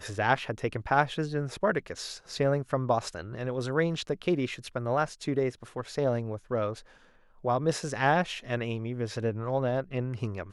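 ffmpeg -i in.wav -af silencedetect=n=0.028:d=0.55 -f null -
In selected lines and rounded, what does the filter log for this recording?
silence_start: 6.73
silence_end: 7.45 | silence_duration: 0.72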